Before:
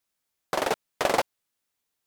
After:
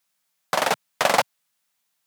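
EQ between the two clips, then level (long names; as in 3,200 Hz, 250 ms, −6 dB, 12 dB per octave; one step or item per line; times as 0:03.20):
high-pass filter 130 Hz 24 dB per octave
parametric band 360 Hz −13 dB 0.87 octaves
+7.0 dB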